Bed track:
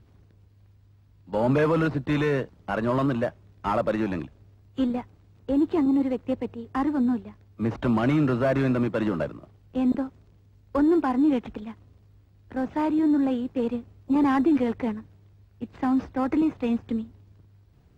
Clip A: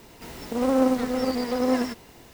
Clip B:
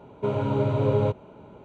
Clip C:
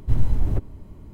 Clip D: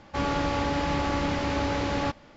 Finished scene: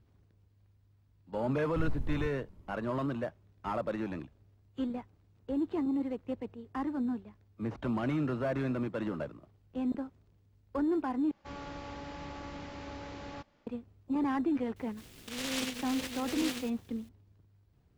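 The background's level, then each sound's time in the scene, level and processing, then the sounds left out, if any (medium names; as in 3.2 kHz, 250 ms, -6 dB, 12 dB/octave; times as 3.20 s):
bed track -9.5 dB
1.68 s: add C -15.5 dB
11.31 s: replace with D -16.5 dB
14.76 s: add A -14.5 dB + delay time shaken by noise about 2.8 kHz, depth 0.36 ms
not used: B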